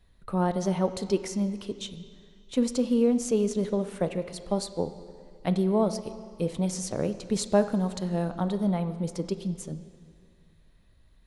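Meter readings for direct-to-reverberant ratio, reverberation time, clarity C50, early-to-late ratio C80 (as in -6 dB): 10.5 dB, 2.1 s, 12.0 dB, 13.0 dB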